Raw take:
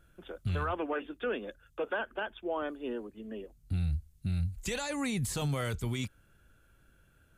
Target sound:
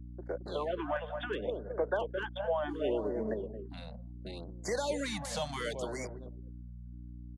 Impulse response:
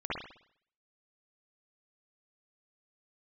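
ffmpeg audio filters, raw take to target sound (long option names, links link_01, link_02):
-filter_complex "[0:a]adynamicequalizer=threshold=0.00631:dfrequency=450:dqfactor=0.89:tfrequency=450:tqfactor=0.89:attack=5:release=100:ratio=0.375:range=2:mode=cutabove:tftype=bell,acrossover=split=340|1900[link_01][link_02][link_03];[link_01]aeval=exprs='(tanh(112*val(0)+0.2)-tanh(0.2))/112':channel_layout=same[link_04];[link_03]aeval=exprs='0.0133*(abs(mod(val(0)/0.0133+3,4)-2)-1)':channel_layout=same[link_05];[link_04][link_02][link_05]amix=inputs=3:normalize=0,highpass=frequency=190:width=0.5412,highpass=frequency=190:width=1.3066,equalizer=frequency=250:width_type=q:width=4:gain=-9,equalizer=frequency=610:width_type=q:width=4:gain=5,equalizer=frequency=1300:width_type=q:width=4:gain=-8,equalizer=frequency=2500:width_type=q:width=4:gain=-9,equalizer=frequency=8000:width_type=q:width=4:gain=-7,lowpass=frequency=8700:width=0.5412,lowpass=frequency=8700:width=1.3066,asplit=2[link_06][link_07];[link_07]adelay=219,lowpass=frequency=940:poles=1,volume=-7dB,asplit=2[link_08][link_09];[link_09]adelay=219,lowpass=frequency=940:poles=1,volume=0.47,asplit=2[link_10][link_11];[link_11]adelay=219,lowpass=frequency=940:poles=1,volume=0.47,asplit=2[link_12][link_13];[link_13]adelay=219,lowpass=frequency=940:poles=1,volume=0.47,asplit=2[link_14][link_15];[link_15]adelay=219,lowpass=frequency=940:poles=1,volume=0.47,asplit=2[link_16][link_17];[link_17]adelay=219,lowpass=frequency=940:poles=1,volume=0.47[link_18];[link_06][link_08][link_10][link_12][link_14][link_16][link_18]amix=inputs=7:normalize=0,asettb=1/sr,asplit=3[link_19][link_20][link_21];[link_19]atrim=end=2.694[link_22];[link_20]atrim=start=2.69:end=3.34,asetpts=PTS-STARTPTS,afade=type=in:duration=0.004:curve=qsin,afade=type=out:start_time=0.646:duration=0.004:curve=qsin,acontrast=47[link_23];[link_21]atrim=start=3.336[link_24];[link_22][link_23]acrossfade=duration=0.004:curve1=hsin:curve2=qsin[link_25];[link_25][link_24]acrossfade=duration=0.004:curve1=qsin:curve2=hsin,anlmdn=0.00158,acompressor=threshold=-37dB:ratio=2,aeval=exprs='val(0)+0.00282*(sin(2*PI*60*n/s)+sin(2*PI*2*60*n/s)/2+sin(2*PI*3*60*n/s)/3+sin(2*PI*4*60*n/s)/4+sin(2*PI*5*60*n/s)/5)':channel_layout=same,afftfilt=real='re*(1-between(b*sr/1024,330*pow(3300/330,0.5+0.5*sin(2*PI*0.7*pts/sr))/1.41,330*pow(3300/330,0.5+0.5*sin(2*PI*0.7*pts/sr))*1.41))':imag='im*(1-between(b*sr/1024,330*pow(3300/330,0.5+0.5*sin(2*PI*0.7*pts/sr))/1.41,330*pow(3300/330,0.5+0.5*sin(2*PI*0.7*pts/sr))*1.41))':win_size=1024:overlap=0.75,volume=6.5dB"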